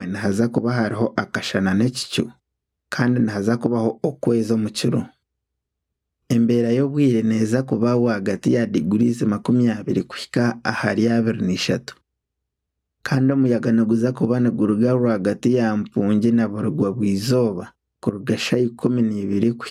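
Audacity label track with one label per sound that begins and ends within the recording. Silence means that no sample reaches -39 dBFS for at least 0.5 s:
2.920000	5.090000	sound
6.300000	11.920000	sound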